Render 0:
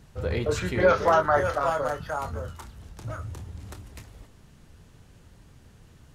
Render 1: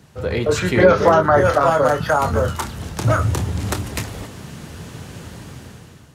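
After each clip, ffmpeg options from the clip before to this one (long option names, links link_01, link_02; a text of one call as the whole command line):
ffmpeg -i in.wav -filter_complex "[0:a]dynaudnorm=framelen=310:gausssize=5:maxgain=14.5dB,highpass=100,acrossover=split=410[link_01][link_02];[link_02]acompressor=threshold=-21dB:ratio=4[link_03];[link_01][link_03]amix=inputs=2:normalize=0,volume=6.5dB" out.wav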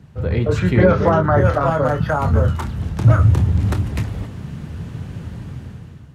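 ffmpeg -i in.wav -af "bass=frequency=250:gain=11,treble=frequency=4000:gain=-9,volume=-3.5dB" out.wav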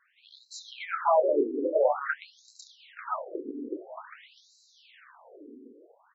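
ffmpeg -i in.wav -filter_complex "[0:a]highpass=52,asplit=2[link_01][link_02];[link_02]adelay=402,lowpass=frequency=2400:poles=1,volume=-10.5dB,asplit=2[link_03][link_04];[link_04]adelay=402,lowpass=frequency=2400:poles=1,volume=0.41,asplit=2[link_05][link_06];[link_06]adelay=402,lowpass=frequency=2400:poles=1,volume=0.41,asplit=2[link_07][link_08];[link_08]adelay=402,lowpass=frequency=2400:poles=1,volume=0.41[link_09];[link_01][link_03][link_05][link_07][link_09]amix=inputs=5:normalize=0,afftfilt=real='re*between(b*sr/1024,330*pow(5500/330,0.5+0.5*sin(2*PI*0.49*pts/sr))/1.41,330*pow(5500/330,0.5+0.5*sin(2*PI*0.49*pts/sr))*1.41)':imag='im*between(b*sr/1024,330*pow(5500/330,0.5+0.5*sin(2*PI*0.49*pts/sr))/1.41,330*pow(5500/330,0.5+0.5*sin(2*PI*0.49*pts/sr))*1.41)':win_size=1024:overlap=0.75,volume=-2.5dB" out.wav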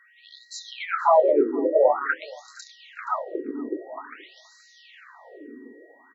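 ffmpeg -i in.wav -af "aeval=exprs='val(0)+0.000891*sin(2*PI*1900*n/s)':channel_layout=same,aecho=1:1:474:0.0708,volume=5.5dB" out.wav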